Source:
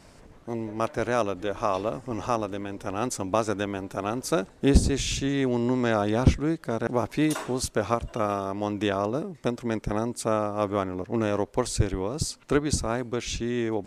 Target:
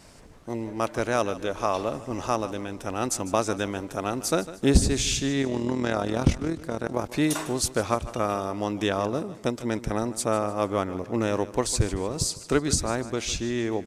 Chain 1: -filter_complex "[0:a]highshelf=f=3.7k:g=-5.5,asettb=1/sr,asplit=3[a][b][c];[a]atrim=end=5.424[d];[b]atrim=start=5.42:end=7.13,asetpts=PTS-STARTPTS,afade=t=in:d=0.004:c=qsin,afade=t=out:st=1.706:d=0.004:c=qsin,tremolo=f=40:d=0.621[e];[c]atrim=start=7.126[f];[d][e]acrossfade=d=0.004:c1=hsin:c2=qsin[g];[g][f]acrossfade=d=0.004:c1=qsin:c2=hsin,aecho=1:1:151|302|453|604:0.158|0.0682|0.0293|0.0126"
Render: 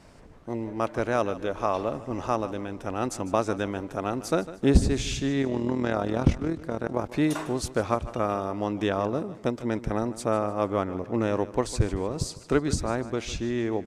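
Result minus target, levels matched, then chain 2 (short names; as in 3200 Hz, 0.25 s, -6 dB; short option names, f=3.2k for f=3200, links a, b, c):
8000 Hz band -8.0 dB
-filter_complex "[0:a]highshelf=f=3.7k:g=6,asettb=1/sr,asplit=3[a][b][c];[a]atrim=end=5.424[d];[b]atrim=start=5.42:end=7.13,asetpts=PTS-STARTPTS,afade=t=in:d=0.004:c=qsin,afade=t=out:st=1.706:d=0.004:c=qsin,tremolo=f=40:d=0.621[e];[c]atrim=start=7.126[f];[d][e]acrossfade=d=0.004:c1=hsin:c2=qsin[g];[g][f]acrossfade=d=0.004:c1=qsin:c2=hsin,aecho=1:1:151|302|453|604:0.158|0.0682|0.0293|0.0126"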